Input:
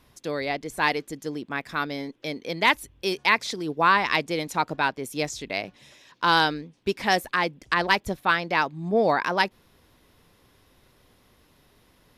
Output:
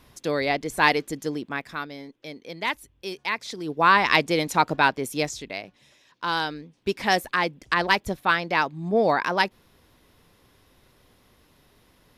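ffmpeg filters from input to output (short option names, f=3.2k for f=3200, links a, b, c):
-af "volume=22dB,afade=t=out:st=1.2:d=0.68:silence=0.281838,afade=t=in:st=3.4:d=0.77:silence=0.266073,afade=t=out:st=4.97:d=0.64:silence=0.298538,afade=t=in:st=6.46:d=0.49:silence=0.473151"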